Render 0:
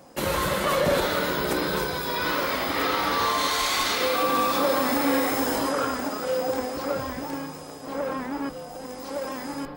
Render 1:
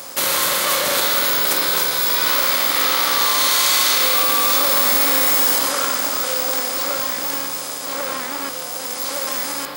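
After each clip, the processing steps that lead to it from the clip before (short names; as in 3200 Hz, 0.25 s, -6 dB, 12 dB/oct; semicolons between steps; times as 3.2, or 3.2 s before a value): per-bin compression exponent 0.6; tilt +4 dB/oct; gain -1 dB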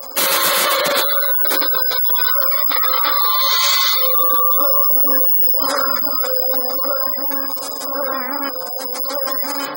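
soft clip -11 dBFS, distortion -18 dB; spectral gate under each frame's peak -15 dB strong; gain +6 dB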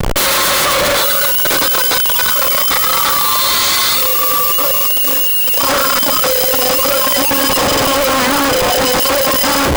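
Schmitt trigger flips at -23.5 dBFS; gain +4 dB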